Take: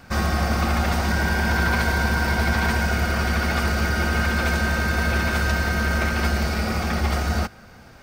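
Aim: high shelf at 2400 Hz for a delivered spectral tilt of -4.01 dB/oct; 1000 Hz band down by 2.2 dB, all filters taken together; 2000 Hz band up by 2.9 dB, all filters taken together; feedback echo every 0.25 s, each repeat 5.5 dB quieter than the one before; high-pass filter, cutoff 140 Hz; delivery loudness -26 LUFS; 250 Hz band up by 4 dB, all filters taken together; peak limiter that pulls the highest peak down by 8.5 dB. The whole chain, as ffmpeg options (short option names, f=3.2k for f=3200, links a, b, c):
-af "highpass=140,equalizer=f=250:t=o:g=6,equalizer=f=1k:t=o:g=-6.5,equalizer=f=2k:t=o:g=4.5,highshelf=f=2.4k:g=5.5,alimiter=limit=-16dB:level=0:latency=1,aecho=1:1:250|500|750|1000|1250|1500|1750:0.531|0.281|0.149|0.079|0.0419|0.0222|0.0118,volume=-3dB"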